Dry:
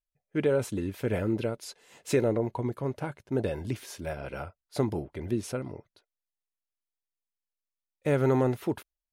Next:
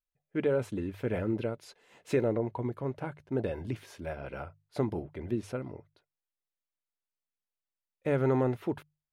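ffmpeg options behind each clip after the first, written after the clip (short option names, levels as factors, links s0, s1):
-af "bass=f=250:g=0,treble=f=4000:g=-10,bandreject=f=50:t=h:w=6,bandreject=f=100:t=h:w=6,bandreject=f=150:t=h:w=6,volume=0.75"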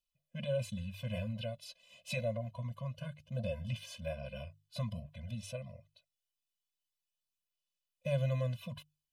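-af "highshelf=f=2300:t=q:w=3:g=8,aphaser=in_gain=1:out_gain=1:delay=1.6:decay=0.35:speed=0.26:type=sinusoidal,afftfilt=real='re*eq(mod(floor(b*sr/1024/240),2),0)':imag='im*eq(mod(floor(b*sr/1024/240),2),0)':win_size=1024:overlap=0.75,volume=0.631"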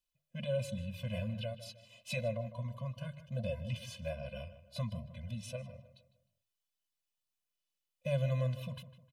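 -filter_complex "[0:a]asplit=2[s0][s1];[s1]adelay=154,lowpass=f=2500:p=1,volume=0.224,asplit=2[s2][s3];[s3]adelay=154,lowpass=f=2500:p=1,volume=0.41,asplit=2[s4][s5];[s5]adelay=154,lowpass=f=2500:p=1,volume=0.41,asplit=2[s6][s7];[s7]adelay=154,lowpass=f=2500:p=1,volume=0.41[s8];[s0][s2][s4][s6][s8]amix=inputs=5:normalize=0"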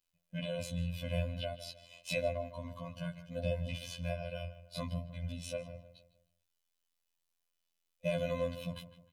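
-af "afftfilt=real='hypot(re,im)*cos(PI*b)':imag='0':win_size=2048:overlap=0.75,volume=2.11"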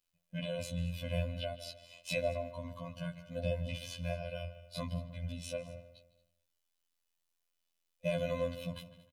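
-af "aecho=1:1:224:0.106"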